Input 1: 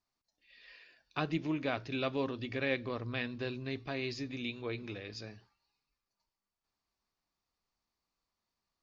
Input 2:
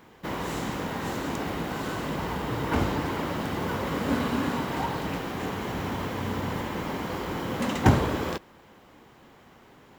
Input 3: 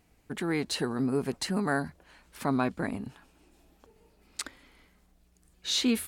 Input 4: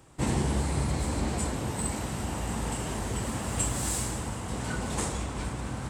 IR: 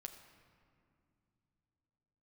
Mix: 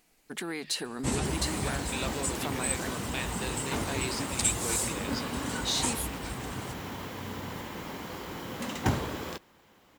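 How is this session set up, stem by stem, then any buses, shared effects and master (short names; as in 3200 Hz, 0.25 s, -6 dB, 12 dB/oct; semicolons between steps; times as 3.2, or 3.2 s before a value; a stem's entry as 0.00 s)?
+1.5 dB, 0.00 s, bus A, no send, dry
-8.5 dB, 1.00 s, no bus, no send, dry
-1.5 dB, 0.00 s, bus A, no send, notches 50/100/150 Hz
-3.0 dB, 0.85 s, no bus, no send, reverb removal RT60 1.6 s
bus A: 0.0 dB, bell 81 Hz -14.5 dB 1.7 oct; compressor, threshold -33 dBFS, peak gain reduction 9 dB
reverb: off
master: high shelf 2700 Hz +8 dB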